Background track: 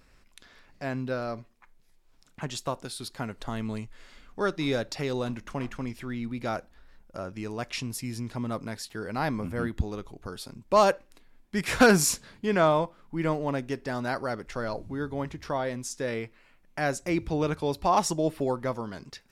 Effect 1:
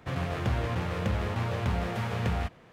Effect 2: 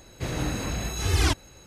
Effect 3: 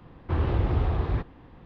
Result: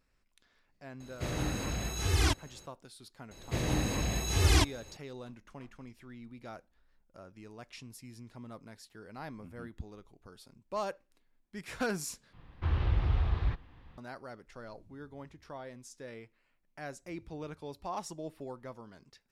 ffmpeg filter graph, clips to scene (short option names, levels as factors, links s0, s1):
-filter_complex "[2:a]asplit=2[s0][s1];[0:a]volume=0.178[s2];[s1]equalizer=f=1400:w=7.5:g=-8.5[s3];[3:a]equalizer=f=370:w=0.36:g=-13[s4];[s2]asplit=2[s5][s6];[s5]atrim=end=12.334[s7];[s4]atrim=end=1.65[s8];[s6]atrim=start=13.976[s9];[s0]atrim=end=1.66,asetpts=PTS-STARTPTS,volume=0.562,afade=t=in:d=0.004:c=hsin,afade=t=out:st=1.656:d=0.004:c=hsin,adelay=1000[s10];[s3]atrim=end=1.66,asetpts=PTS-STARTPTS,volume=0.794,afade=t=in:d=0.004:c=hsin,afade=t=out:st=1.656:d=0.004:c=hsin,adelay=3310[s11];[s7][s8]acrossfade=d=0.004:c1=hsin:c2=hsin[s12];[s12][s9]acrossfade=d=0.004:c1=hsin:c2=hsin[s13];[s13][s10][s11]amix=inputs=3:normalize=0"